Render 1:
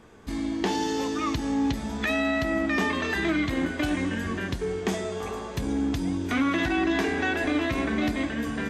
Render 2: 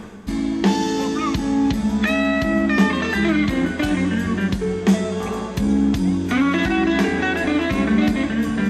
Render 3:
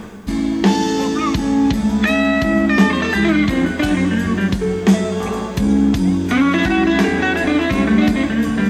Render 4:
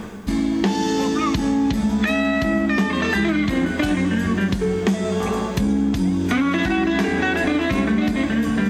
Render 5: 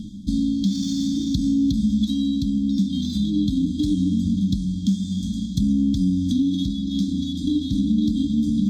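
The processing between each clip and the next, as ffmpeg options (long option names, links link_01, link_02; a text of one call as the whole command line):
ffmpeg -i in.wav -af "equalizer=frequency=200:width_type=o:width=0.27:gain=14,areverse,acompressor=mode=upward:threshold=-25dB:ratio=2.5,areverse,volume=5dB" out.wav
ffmpeg -i in.wav -af "acrusher=bits=9:mix=0:aa=0.000001,volume=3.5dB" out.wav
ffmpeg -i in.wav -af "acompressor=threshold=-16dB:ratio=6" out.wav
ffmpeg -i in.wav -af "afftfilt=real='re*(1-between(b*sr/4096,320,3200))':imag='im*(1-between(b*sr/4096,320,3200))':win_size=4096:overlap=0.75,adynamicsmooth=sensitivity=5:basefreq=6200" out.wav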